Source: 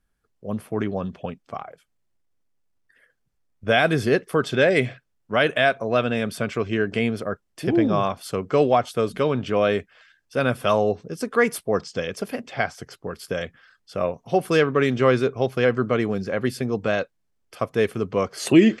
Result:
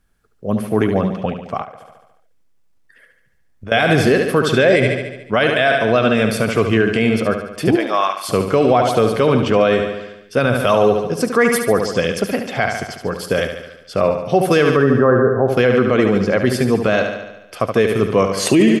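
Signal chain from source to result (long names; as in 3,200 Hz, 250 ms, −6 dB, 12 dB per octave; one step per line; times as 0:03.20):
0:14.66–0:15.48: linear-phase brick-wall low-pass 1,900 Hz
repeating echo 72 ms, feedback 60%, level −8.5 dB
0:01.63–0:03.72: downward compressor 4 to 1, threshold −42 dBFS, peak gain reduction 21 dB
0:07.75–0:08.28: high-pass filter 570 Hz → 1,300 Hz 12 dB per octave
boost into a limiter +12 dB
level −3 dB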